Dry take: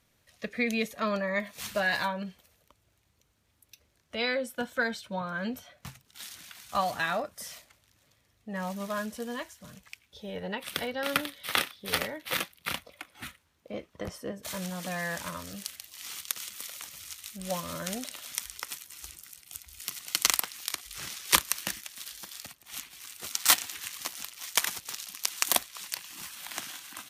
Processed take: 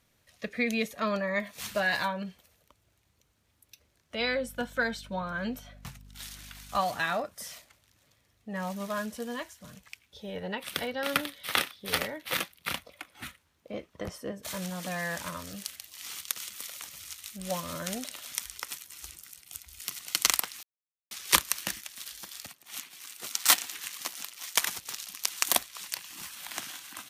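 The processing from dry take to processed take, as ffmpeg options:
ffmpeg -i in.wav -filter_complex "[0:a]asettb=1/sr,asplit=3[link_01][link_02][link_03];[link_01]atrim=end=4.194[link_04];[link_02]atrim=start=4.19:end=6.79,asetpts=PTS-STARTPTS,afade=type=in:duration=0.004:curve=qsin,afade=type=out:start_time=2.596:duration=0.004:curve=qsin,aeval=exprs='val(0)+0.00316*(sin(2*PI*50*n/s)+sin(2*PI*2*50*n/s)/2+sin(2*PI*3*50*n/s)/3+sin(2*PI*4*50*n/s)/4+sin(2*PI*5*50*n/s)/5)':channel_layout=same[link_05];[link_03]atrim=start=6.786[link_06];[link_04][link_05]acrossfade=duration=0.004:curve1=hsin:curve2=qsin[link_07];[link_07][link_06]acrossfade=duration=0.004:curve1=qsin:curve2=hsin,asettb=1/sr,asplit=3[link_08][link_09][link_10];[link_08]atrim=end=22.484[link_11];[link_09]atrim=start=22.48:end=24.57,asetpts=PTS-STARTPTS,afade=type=in:duration=0.004:curve=qsin,afade=type=out:start_time=2.086:duration=0.004:curve=qsin,highpass=160[link_12];[link_10]atrim=start=24.566[link_13];[link_11][link_12]acrossfade=duration=0.004:curve1=hsin:curve2=qsin[link_14];[link_14][link_13]acrossfade=duration=0.004:curve1=qsin:curve2=hsin,asplit=3[link_15][link_16][link_17];[link_15]atrim=end=20.63,asetpts=PTS-STARTPTS,afade=type=out:start_time=20.626:duration=0.004:curve=hsin[link_18];[link_16]atrim=start=20.63:end=21.11,asetpts=PTS-STARTPTS,volume=0[link_19];[link_17]atrim=start=21.11,asetpts=PTS-STARTPTS,afade=type=in:duration=0.004:curve=hsin[link_20];[link_18][link_19][link_20]concat=n=3:v=0:a=1" out.wav

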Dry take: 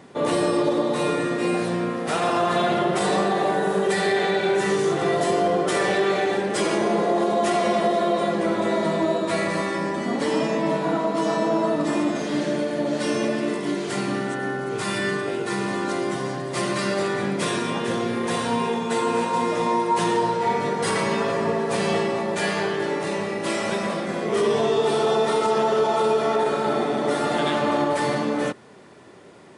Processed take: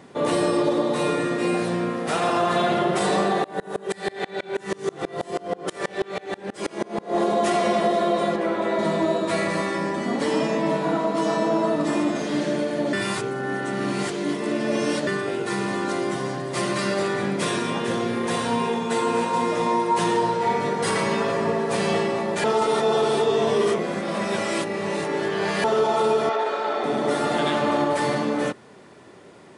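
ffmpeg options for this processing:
ffmpeg -i in.wav -filter_complex "[0:a]asettb=1/sr,asplit=3[link_01][link_02][link_03];[link_01]atrim=end=3.444[link_04];[link_02]atrim=start=3.44:end=7.15,asetpts=PTS-STARTPTS,afade=type=in:duration=0.004:curve=qsin,afade=type=out:start_time=3.706:duration=0.004:curve=qsin,aeval=exprs='val(0)*pow(10,-29*if(lt(mod(-6.2*n/s,1),2*abs(-6.2)/1000),1-mod(-6.2*n/s,1)/(2*abs(-6.2)/1000),(mod(-6.2*n/s,1)-2*abs(-6.2)/1000)/(1-2*abs(-6.2)/1000))/20)':channel_layout=same[link_05];[link_03]atrim=start=7.146[link_06];[link_04][link_05]acrossfade=duration=0.004:curve1=hsin:curve2=qsin[link_07];[link_07][link_06]acrossfade=duration=0.004:curve1=qsin:curve2=hsin,asettb=1/sr,asplit=3[link_08][link_09][link_10];[link_08]atrim=end=8.364[link_11];[link_09]atrim=start=8.36:end=8.79,asetpts=PTS-STARTPTS,afade=type=in:duration=0.004:curve=qsin,afade=type=out:start_time=0.426:duration=0.004:curve=qsin,bass=frequency=250:gain=-8,treble=frequency=4000:gain=-9[link_12];[link_10]atrim=start=8.786[link_13];[link_11][link_12]acrossfade=duration=0.004:curve1=hsin:curve2=qsin[link_14];[link_14][link_13]acrossfade=duration=0.004:curve1=qsin:curve2=hsin,asettb=1/sr,asplit=3[link_15][link_16][link_17];[link_15]atrim=end=26.294[link_18];[link_16]atrim=start=26.29:end=26.84,asetpts=PTS-STARTPTS,afade=type=in:duration=0.004:curve=qsin,afade=type=out:start_time=0.546:duration=0.004:curve=qsin,highpass=490,lowpass=4900[link_19];[link_17]atrim=start=26.836[link_20];[link_18][link_19]acrossfade=duration=0.004:curve1=hsin:curve2=qsin[link_21];[link_21][link_20]acrossfade=duration=0.004:curve1=qsin:curve2=hsin,asplit=5[link_22][link_23][link_24][link_25][link_26];[link_22]atrim=end=12.932[link_27];[link_23]atrim=start=12.928:end=15.072,asetpts=PTS-STARTPTS,areverse[link_28];[link_24]atrim=start=15.068:end=22.442[link_29];[link_25]atrim=start=22.438:end=25.642,asetpts=PTS-STARTPTS,areverse[link_30];[link_26]atrim=start=25.638[link_31];[link_27][link_28]acrossfade=duration=0.004:curve1=hsin:curve2=hsin[link_32];[link_32][link_29]acrossfade=duration=0.004:curve1=hsin:curve2=hsin[link_33];[link_33][link_30]acrossfade=duration=0.004:curve1=hsin:curve2=hsin[link_34];[link_34][link_31]acrossfade=duration=0.004:curve1=hsin:curve2=hsin" out.wav

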